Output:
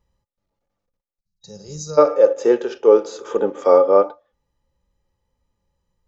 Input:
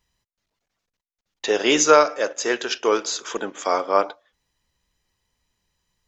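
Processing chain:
0:01.19–0:01.98: gain on a spectral selection 200–3,800 Hz −29 dB
0:01.58–0:04.02: parametric band 430 Hz +6.5 dB 0.51 octaves
harmonic and percussive parts rebalanced percussive −8 dB
tilt shelving filter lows +8 dB, about 790 Hz
speech leveller within 3 dB 0.5 s
hollow resonant body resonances 540/850/1,200 Hz, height 13 dB, ringing for 65 ms

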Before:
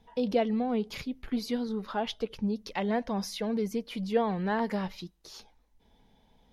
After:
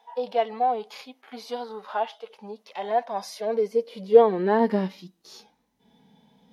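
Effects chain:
harmonic and percussive parts rebalanced percussive −18 dB
high-pass filter sweep 770 Hz → 160 Hz, 0:03.03–0:05.70
level +7.5 dB

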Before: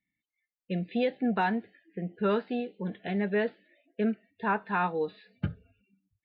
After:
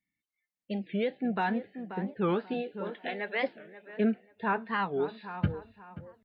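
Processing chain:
0:02.53–0:03.43: high-pass filter 280 Hz → 840 Hz 12 dB per octave
tape delay 534 ms, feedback 35%, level −13 dB, low-pass 1,700 Hz
speech leveller within 3 dB 0.5 s
wow of a warped record 45 rpm, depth 250 cents

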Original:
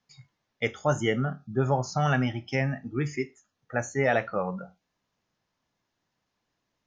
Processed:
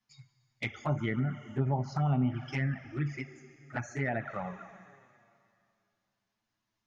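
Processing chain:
parametric band 490 Hz −14 dB 0.48 octaves
four-comb reverb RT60 2.5 s, combs from 28 ms, DRR 12 dB
treble cut that deepens with the level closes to 1,300 Hz, closed at −22 dBFS
flanger swept by the level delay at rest 9.2 ms, full sweep at −22.5 dBFS
level −1.5 dB

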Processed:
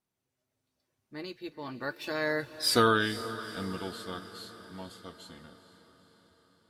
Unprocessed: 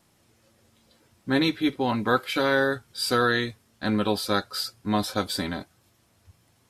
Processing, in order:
source passing by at 0:02.71, 42 m/s, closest 7.7 metres
feedback delay with all-pass diffusion 464 ms, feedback 57%, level −14 dB
level +1 dB

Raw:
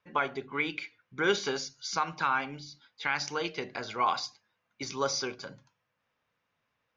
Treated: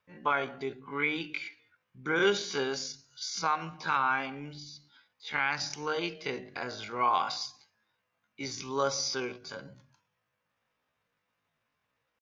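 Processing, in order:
tempo change 0.57×

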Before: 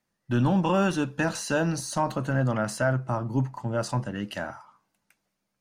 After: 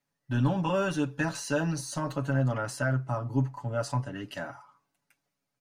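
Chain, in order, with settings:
comb filter 7.1 ms, depth 85%
level −6 dB

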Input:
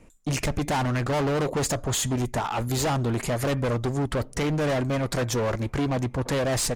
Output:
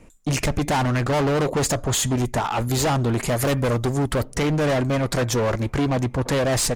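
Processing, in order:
0:03.28–0:04.24: high-shelf EQ 9,200 Hz +9.5 dB
level +4 dB

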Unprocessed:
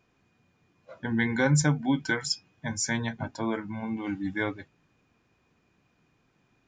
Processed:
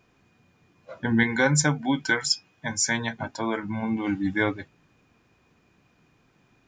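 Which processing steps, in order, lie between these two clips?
0:01.23–0:03.63: low-shelf EQ 330 Hz −8 dB
level +5.5 dB

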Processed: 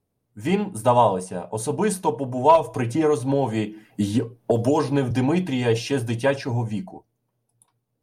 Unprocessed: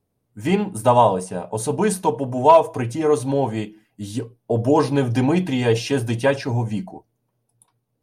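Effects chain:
0:02.55–0:05.11: multiband upward and downward compressor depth 100%
level −2.5 dB

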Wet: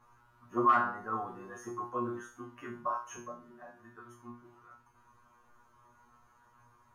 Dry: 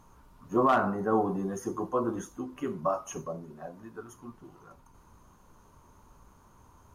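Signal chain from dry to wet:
parametric band 1,500 Hz +12.5 dB 1.7 octaves
tuned comb filter 120 Hz, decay 0.34 s, harmonics all, mix 100%

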